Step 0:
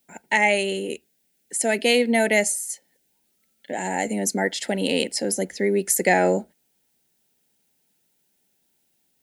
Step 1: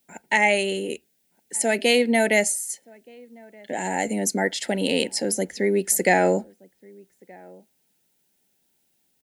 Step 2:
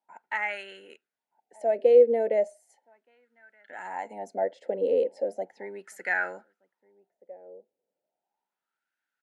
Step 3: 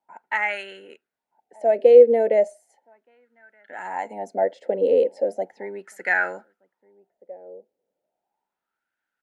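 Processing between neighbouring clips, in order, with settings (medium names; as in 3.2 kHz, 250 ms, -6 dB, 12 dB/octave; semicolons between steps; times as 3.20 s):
echo from a far wall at 210 m, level -25 dB
wah-wah 0.36 Hz 480–1500 Hz, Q 7.4; trim +6 dB
tape noise reduction on one side only decoder only; trim +6 dB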